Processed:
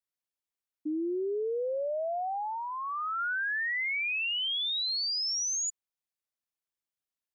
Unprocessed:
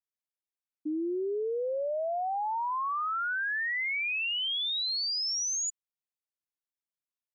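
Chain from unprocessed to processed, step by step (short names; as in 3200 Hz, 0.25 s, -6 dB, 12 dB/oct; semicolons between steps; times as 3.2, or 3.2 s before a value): 1.62–3.19 dynamic EQ 1000 Hz, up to -5 dB, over -46 dBFS, Q 2.8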